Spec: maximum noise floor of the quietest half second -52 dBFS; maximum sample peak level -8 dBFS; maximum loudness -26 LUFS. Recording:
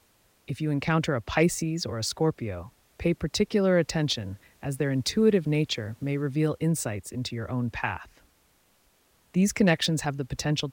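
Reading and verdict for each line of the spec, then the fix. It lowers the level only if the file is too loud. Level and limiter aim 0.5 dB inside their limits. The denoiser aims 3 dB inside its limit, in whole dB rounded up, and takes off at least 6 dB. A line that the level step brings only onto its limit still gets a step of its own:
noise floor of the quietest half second -65 dBFS: pass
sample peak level -10.0 dBFS: pass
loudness -27.0 LUFS: pass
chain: none needed

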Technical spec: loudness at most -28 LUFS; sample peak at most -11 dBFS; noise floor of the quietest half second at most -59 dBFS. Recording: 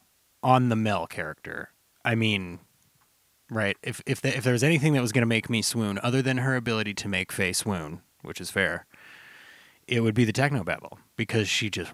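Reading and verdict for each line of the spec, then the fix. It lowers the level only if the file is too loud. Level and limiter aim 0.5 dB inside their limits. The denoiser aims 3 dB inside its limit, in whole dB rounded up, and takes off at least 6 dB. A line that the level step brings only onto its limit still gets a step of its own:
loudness -26.0 LUFS: fail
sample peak -6.0 dBFS: fail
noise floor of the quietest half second -66 dBFS: pass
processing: trim -2.5 dB; peak limiter -11.5 dBFS

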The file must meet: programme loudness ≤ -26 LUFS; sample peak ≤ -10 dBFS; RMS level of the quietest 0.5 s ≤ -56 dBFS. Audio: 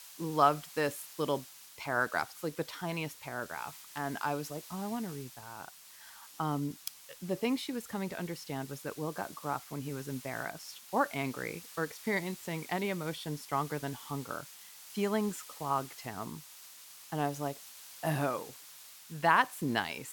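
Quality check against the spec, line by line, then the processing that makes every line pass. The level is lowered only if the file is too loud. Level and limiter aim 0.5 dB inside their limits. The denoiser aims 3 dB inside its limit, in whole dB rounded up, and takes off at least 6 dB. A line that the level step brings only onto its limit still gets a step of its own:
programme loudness -35.0 LUFS: pass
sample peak -10.5 dBFS: pass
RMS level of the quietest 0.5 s -53 dBFS: fail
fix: noise reduction 6 dB, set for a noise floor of -53 dBFS

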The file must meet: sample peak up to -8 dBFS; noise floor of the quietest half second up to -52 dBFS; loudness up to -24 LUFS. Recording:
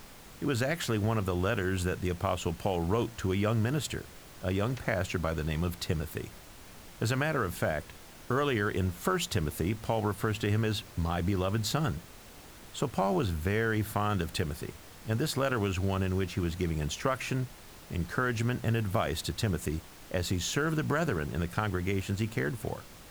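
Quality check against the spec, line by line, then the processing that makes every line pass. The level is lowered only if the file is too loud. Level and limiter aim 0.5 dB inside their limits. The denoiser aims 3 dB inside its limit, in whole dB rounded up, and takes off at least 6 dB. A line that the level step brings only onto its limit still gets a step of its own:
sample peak -14.0 dBFS: pass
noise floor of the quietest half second -50 dBFS: fail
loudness -31.5 LUFS: pass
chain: noise reduction 6 dB, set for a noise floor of -50 dBFS

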